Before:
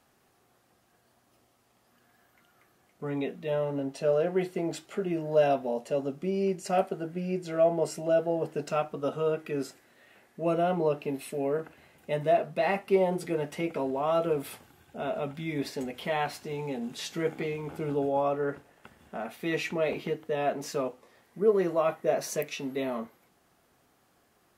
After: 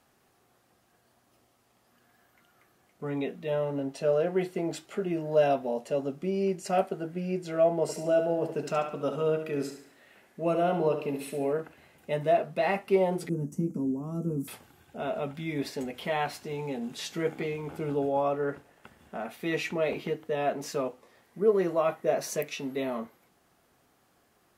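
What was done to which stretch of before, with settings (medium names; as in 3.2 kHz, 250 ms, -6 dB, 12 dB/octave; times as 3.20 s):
7.82–11.53 s: feedback delay 70 ms, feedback 42%, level -8.5 dB
13.29–14.48 s: FFT filter 100 Hz 0 dB, 220 Hz +12 dB, 670 Hz -21 dB, 1.1 kHz -16 dB, 2.1 kHz -29 dB, 3.9 kHz -29 dB, 6.3 kHz +1 dB, 9.7 kHz -3 dB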